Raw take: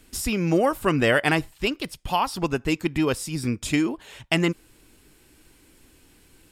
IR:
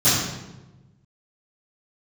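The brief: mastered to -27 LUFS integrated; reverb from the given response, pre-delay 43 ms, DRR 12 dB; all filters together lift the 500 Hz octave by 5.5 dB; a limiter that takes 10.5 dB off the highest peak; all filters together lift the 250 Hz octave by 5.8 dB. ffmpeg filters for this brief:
-filter_complex "[0:a]equalizer=f=250:t=o:g=6,equalizer=f=500:t=o:g=5,alimiter=limit=-13dB:level=0:latency=1,asplit=2[a][b];[1:a]atrim=start_sample=2205,adelay=43[c];[b][c]afir=irnorm=-1:irlink=0,volume=-31dB[d];[a][d]amix=inputs=2:normalize=0,volume=-4dB"

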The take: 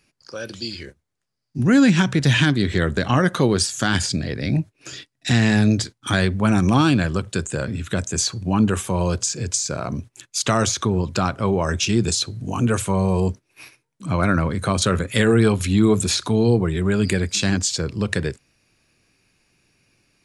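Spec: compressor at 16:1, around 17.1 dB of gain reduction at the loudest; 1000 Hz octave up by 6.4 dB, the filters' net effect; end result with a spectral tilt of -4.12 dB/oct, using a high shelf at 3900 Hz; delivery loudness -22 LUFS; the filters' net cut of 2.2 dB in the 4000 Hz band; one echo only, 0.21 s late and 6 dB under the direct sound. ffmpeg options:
-af "equalizer=f=1k:t=o:g=8,highshelf=f=3.9k:g=8.5,equalizer=f=4k:t=o:g=-9,acompressor=threshold=-27dB:ratio=16,aecho=1:1:210:0.501,volume=9dB"

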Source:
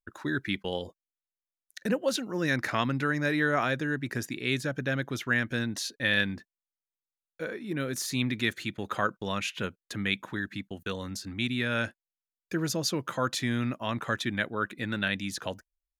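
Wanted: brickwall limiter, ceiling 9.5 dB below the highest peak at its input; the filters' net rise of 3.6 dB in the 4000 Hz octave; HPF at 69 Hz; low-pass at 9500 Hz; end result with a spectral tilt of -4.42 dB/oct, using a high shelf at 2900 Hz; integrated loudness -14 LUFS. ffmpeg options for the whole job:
-af "highpass=69,lowpass=9.5k,highshelf=f=2.9k:g=-5,equalizer=f=4k:t=o:g=8,volume=18dB,alimiter=limit=-1dB:level=0:latency=1"

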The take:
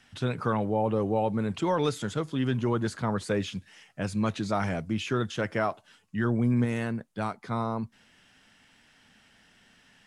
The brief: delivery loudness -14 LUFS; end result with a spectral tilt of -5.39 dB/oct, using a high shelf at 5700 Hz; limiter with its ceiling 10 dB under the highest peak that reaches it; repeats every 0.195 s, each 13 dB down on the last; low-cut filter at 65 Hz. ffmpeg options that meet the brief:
-af "highpass=65,highshelf=f=5.7k:g=5,alimiter=level_in=0.5dB:limit=-24dB:level=0:latency=1,volume=-0.5dB,aecho=1:1:195|390|585:0.224|0.0493|0.0108,volume=20dB"

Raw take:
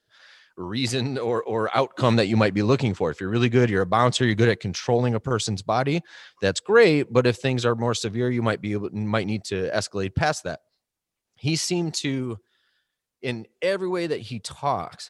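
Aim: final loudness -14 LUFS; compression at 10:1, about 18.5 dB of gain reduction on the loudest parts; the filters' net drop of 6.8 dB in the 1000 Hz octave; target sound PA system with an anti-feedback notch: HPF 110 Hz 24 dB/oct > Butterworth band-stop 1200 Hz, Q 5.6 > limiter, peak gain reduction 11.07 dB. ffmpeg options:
-af "equalizer=f=1k:t=o:g=-8,acompressor=threshold=-33dB:ratio=10,highpass=f=110:w=0.5412,highpass=f=110:w=1.3066,asuperstop=centerf=1200:order=8:qfactor=5.6,volume=28.5dB,alimiter=limit=-4.5dB:level=0:latency=1"

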